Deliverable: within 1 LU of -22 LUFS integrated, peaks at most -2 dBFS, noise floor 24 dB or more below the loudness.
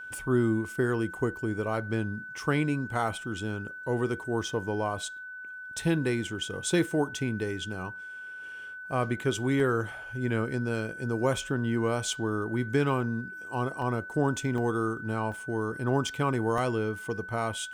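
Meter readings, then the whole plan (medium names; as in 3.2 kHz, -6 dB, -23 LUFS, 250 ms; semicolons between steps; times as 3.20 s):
dropouts 6; longest dropout 1.7 ms; steady tone 1.5 kHz; tone level -39 dBFS; loudness -30.0 LUFS; peak level -14.5 dBFS; loudness target -22.0 LUFS
-> interpolate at 3.08/9.60/13.82/14.58/15.32/16.58 s, 1.7 ms; band-stop 1.5 kHz, Q 30; trim +8 dB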